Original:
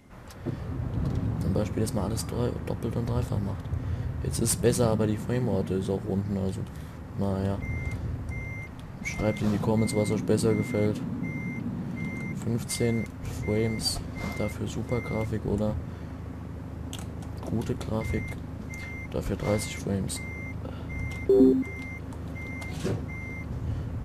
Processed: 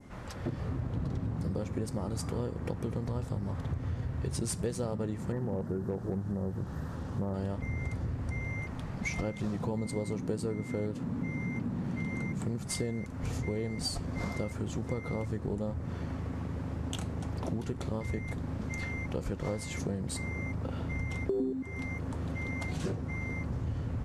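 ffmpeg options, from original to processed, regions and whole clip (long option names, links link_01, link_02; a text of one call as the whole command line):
ffmpeg -i in.wav -filter_complex "[0:a]asettb=1/sr,asplit=3[link_01][link_02][link_03];[link_01]atrim=end=5.324[link_04];[link_02]atrim=start=5.32:end=7.34,asetpts=PTS-STARTPTS,afade=type=in:duration=0.004:curve=qsin,afade=type=out:start_time=2.016:duration=0.004:curve=qsin,asuperstop=centerf=5200:order=20:qfactor=0.51,acrusher=bits=8:mix=0:aa=0.5,asoftclip=type=hard:threshold=-19.5dB[link_05];[link_03]atrim=start=7.336[link_06];[link_04][link_05]acrossfade=duration=0.004:curve1=hsin:curve2=qsin[link_07];[link_07][link_06]acrossfade=duration=0.004:curve1=qsin:curve2=hsin,lowpass=9100,adynamicequalizer=threshold=0.00224:dfrequency=3200:dqfactor=1.1:tfrequency=3200:tqfactor=1.1:attack=5:release=100:ratio=0.375:range=2.5:mode=cutabove:tftype=bell,acompressor=threshold=-33dB:ratio=6,volume=2.5dB" out.wav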